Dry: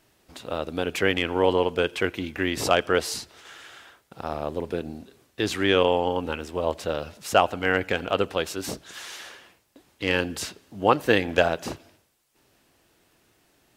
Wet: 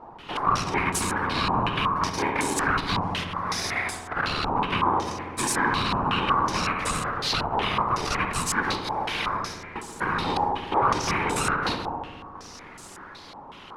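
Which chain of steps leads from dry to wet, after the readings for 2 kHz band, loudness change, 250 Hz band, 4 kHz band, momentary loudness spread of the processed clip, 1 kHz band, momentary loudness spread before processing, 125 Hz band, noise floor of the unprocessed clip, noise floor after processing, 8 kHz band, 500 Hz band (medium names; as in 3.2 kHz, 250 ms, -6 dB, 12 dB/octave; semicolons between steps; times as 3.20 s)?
+1.0 dB, -0.5 dB, -1.0 dB, +1.5 dB, 15 LU, +5.5 dB, 17 LU, +3.0 dB, -65 dBFS, -44 dBFS, +6.0 dB, -8.0 dB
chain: bit-reversed sample order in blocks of 16 samples; bass shelf 120 Hz -10 dB; peak limiter -14.5 dBFS, peak gain reduction 11 dB; compression 6:1, threshold -39 dBFS, peak gain reduction 17 dB; ring modulator 630 Hz; sine folder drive 18 dB, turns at -21 dBFS; whisper effect; filtered feedback delay 68 ms, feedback 83%, low-pass 2 kHz, level -7 dB; spring tank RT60 1.8 s, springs 57 ms, chirp 80 ms, DRR 10.5 dB; step-sequenced low-pass 5.4 Hz 840–7800 Hz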